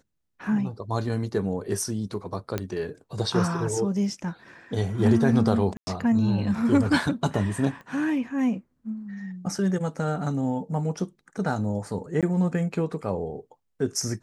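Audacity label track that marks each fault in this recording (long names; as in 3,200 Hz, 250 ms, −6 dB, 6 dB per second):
2.580000	2.580000	click −13 dBFS
5.770000	5.870000	drop-out 100 ms
7.810000	7.810000	click −31 dBFS
12.210000	12.230000	drop-out 17 ms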